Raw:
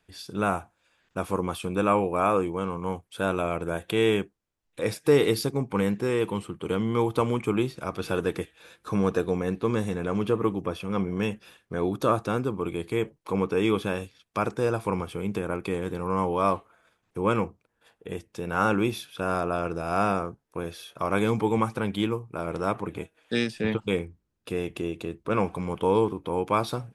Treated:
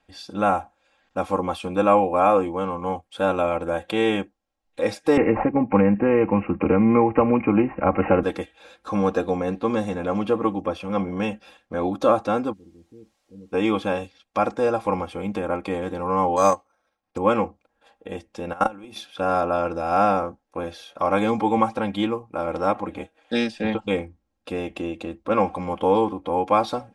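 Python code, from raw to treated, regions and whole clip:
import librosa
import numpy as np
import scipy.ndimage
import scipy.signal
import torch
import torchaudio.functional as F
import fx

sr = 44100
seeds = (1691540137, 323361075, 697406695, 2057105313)

y = fx.chain(x, sr, fx.low_shelf(hz=350.0, db=7.5),
    fx.resample_bad(factor=8, down='none', up='filtered'),
    fx.band_squash(depth_pct=100), at=(5.17, 8.23))
y = fx.cheby2_bandstop(y, sr, low_hz=820.0, high_hz=10000.0, order=4, stop_db=40, at=(12.52, 13.52), fade=0.02)
y = fx.tone_stack(y, sr, knobs='5-5-5', at=(12.52, 13.52), fade=0.02)
y = fx.dmg_noise_colour(y, sr, seeds[0], colour='white', level_db=-71.0, at=(12.52, 13.52), fade=0.02)
y = fx.chain(y, sr, fx.transient(attack_db=5, sustain_db=-12),
    fx.resample_bad(factor=6, down='none', up='hold'), at=(16.36, 17.18))
y = fx.chain(y, sr, fx.peak_eq(hz=9500.0, db=10.5, octaves=0.43),
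    fx.level_steps(step_db=22), at=(18.53, 18.96))
y = scipy.signal.sosfilt(scipy.signal.butter(2, 7100.0, 'lowpass', fs=sr, output='sos'), y)
y = fx.peak_eq(y, sr, hz=720.0, db=10.0, octaves=0.64)
y = y + 0.74 * np.pad(y, (int(3.7 * sr / 1000.0), 0))[:len(y)]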